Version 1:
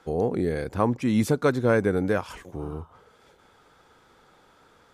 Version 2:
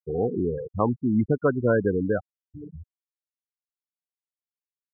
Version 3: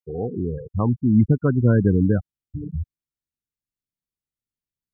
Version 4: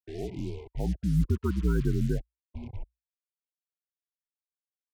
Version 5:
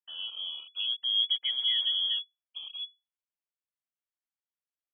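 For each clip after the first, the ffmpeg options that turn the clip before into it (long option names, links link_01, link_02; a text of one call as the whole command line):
ffmpeg -i in.wav -af "afftfilt=real='re*gte(hypot(re,im),0.141)':imag='im*gte(hypot(re,im),0.141)':win_size=1024:overlap=0.75" out.wav
ffmpeg -i in.wav -af "asubboost=boost=11:cutoff=240,volume=-2dB" out.wav
ffmpeg -i in.wav -af "acrusher=bits=5:mix=0:aa=0.5,afreqshift=-59,afftfilt=real='re*(1-between(b*sr/1024,620*pow(1500/620,0.5+0.5*sin(2*PI*0.48*pts/sr))/1.41,620*pow(1500/620,0.5+0.5*sin(2*PI*0.48*pts/sr))*1.41))':imag='im*(1-between(b*sr/1024,620*pow(1500/620,0.5+0.5*sin(2*PI*0.48*pts/sr))/1.41,620*pow(1500/620,0.5+0.5*sin(2*PI*0.48*pts/sr))*1.41))':win_size=1024:overlap=0.75,volume=-8.5dB" out.wav
ffmpeg -i in.wav -af "lowpass=frequency=2900:width_type=q:width=0.5098,lowpass=frequency=2900:width_type=q:width=0.6013,lowpass=frequency=2900:width_type=q:width=0.9,lowpass=frequency=2900:width_type=q:width=2.563,afreqshift=-3400,volume=-3dB" out.wav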